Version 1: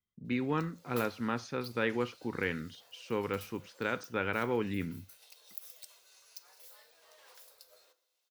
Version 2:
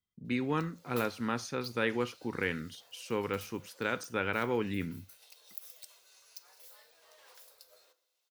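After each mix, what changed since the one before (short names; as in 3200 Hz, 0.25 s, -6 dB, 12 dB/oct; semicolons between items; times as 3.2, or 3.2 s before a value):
speech: remove air absorption 110 m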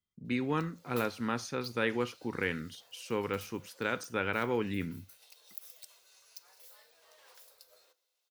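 background: send -6.0 dB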